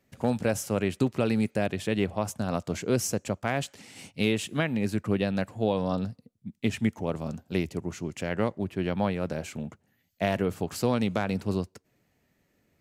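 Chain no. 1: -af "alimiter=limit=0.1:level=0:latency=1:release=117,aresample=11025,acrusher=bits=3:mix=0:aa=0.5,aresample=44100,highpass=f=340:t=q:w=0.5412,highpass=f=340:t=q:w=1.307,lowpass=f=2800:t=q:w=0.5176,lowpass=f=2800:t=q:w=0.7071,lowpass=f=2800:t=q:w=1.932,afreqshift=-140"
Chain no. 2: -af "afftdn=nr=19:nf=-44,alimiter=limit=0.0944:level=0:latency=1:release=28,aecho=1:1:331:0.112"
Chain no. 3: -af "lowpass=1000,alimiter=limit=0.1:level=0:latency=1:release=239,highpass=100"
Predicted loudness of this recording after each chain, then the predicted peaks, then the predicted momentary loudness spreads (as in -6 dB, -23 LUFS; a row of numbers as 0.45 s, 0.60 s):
-37.5 LUFS, -33.0 LUFS, -33.5 LUFS; -20.0 dBFS, -19.5 dBFS, -18.5 dBFS; 6 LU, 7 LU, 6 LU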